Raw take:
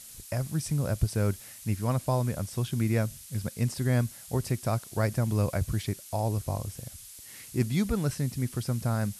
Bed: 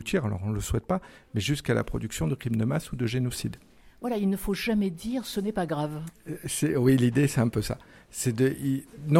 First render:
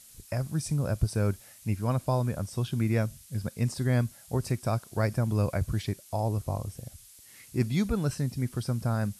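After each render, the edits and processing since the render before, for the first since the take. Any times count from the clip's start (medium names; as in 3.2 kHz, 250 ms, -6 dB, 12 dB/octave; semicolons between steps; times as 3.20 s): noise print and reduce 6 dB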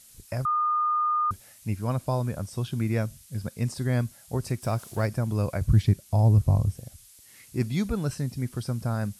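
0.45–1.31 s: bleep 1.22 kHz -21.5 dBFS; 4.62–5.06 s: companding laws mixed up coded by mu; 5.65–6.75 s: tone controls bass +12 dB, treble -1 dB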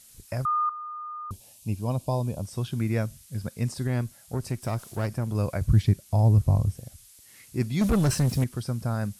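0.69–2.45 s: high-order bell 1.6 kHz -14.5 dB 1 oct; 3.87–5.35 s: valve stage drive 19 dB, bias 0.35; 7.81–8.44 s: waveshaping leveller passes 3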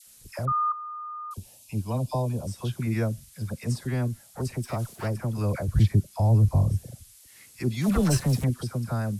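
phase dispersion lows, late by 70 ms, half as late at 960 Hz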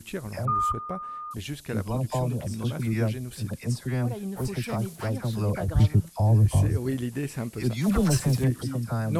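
add bed -8 dB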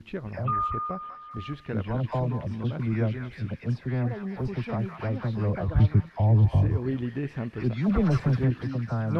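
distance through air 300 m; repeats whose band climbs or falls 194 ms, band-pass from 1.4 kHz, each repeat 0.7 oct, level -2.5 dB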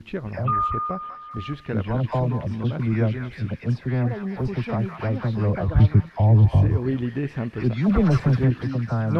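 trim +4.5 dB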